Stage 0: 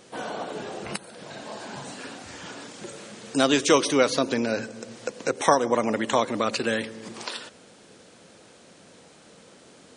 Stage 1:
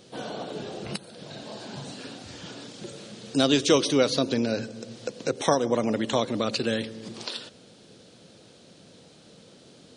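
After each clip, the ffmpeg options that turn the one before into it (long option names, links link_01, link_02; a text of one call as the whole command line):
ffmpeg -i in.wav -af "equalizer=frequency=125:width_type=o:width=1:gain=5,equalizer=frequency=1000:width_type=o:width=1:gain=-6,equalizer=frequency=2000:width_type=o:width=1:gain=-6,equalizer=frequency=4000:width_type=o:width=1:gain=5,equalizer=frequency=8000:width_type=o:width=1:gain=-6" out.wav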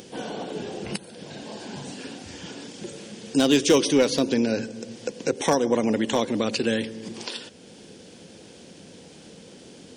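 ffmpeg -i in.wav -af "volume=13.5dB,asoftclip=hard,volume=-13.5dB,acompressor=mode=upward:threshold=-42dB:ratio=2.5,equalizer=frequency=125:width_type=o:width=0.33:gain=-9,equalizer=frequency=630:width_type=o:width=0.33:gain=-6,equalizer=frequency=1250:width_type=o:width=0.33:gain=-8,equalizer=frequency=4000:width_type=o:width=0.33:gain=-8,volume=4dB" out.wav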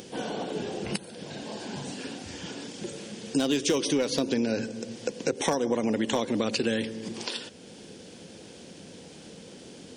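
ffmpeg -i in.wav -af "acompressor=threshold=-22dB:ratio=6" out.wav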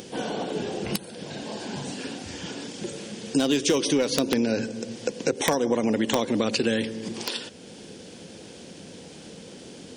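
ffmpeg -i in.wav -af "aeval=exprs='(mod(5.01*val(0)+1,2)-1)/5.01':channel_layout=same,volume=3dB" out.wav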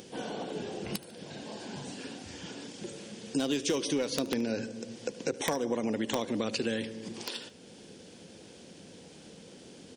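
ffmpeg -i in.wav -af "aecho=1:1:74|148|222:0.1|0.037|0.0137,volume=-7.5dB" out.wav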